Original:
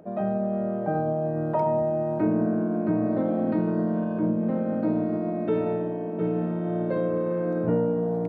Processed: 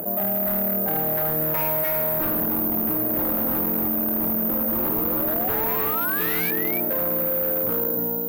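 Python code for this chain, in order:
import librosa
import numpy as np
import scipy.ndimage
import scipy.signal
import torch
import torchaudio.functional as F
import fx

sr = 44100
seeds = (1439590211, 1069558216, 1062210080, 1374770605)

p1 = fx.fade_out_tail(x, sr, length_s=0.74)
p2 = fx.low_shelf(p1, sr, hz=490.0, db=-5.5)
p3 = fx.spec_paint(p2, sr, seeds[0], shape='rise', start_s=4.71, length_s=1.8, low_hz=320.0, high_hz=2400.0, level_db=-32.0)
p4 = (np.kron(scipy.signal.resample_poly(p3, 1, 3), np.eye(3)[0]) * 3)[:len(p3)]
p5 = p4 + fx.echo_single(p4, sr, ms=296, db=-5.5, dry=0)
p6 = 10.0 ** (-14.5 / 20.0) * (np.abs((p5 / 10.0 ** (-14.5 / 20.0) + 3.0) % 4.0 - 2.0) - 1.0)
y = fx.env_flatten(p6, sr, amount_pct=70)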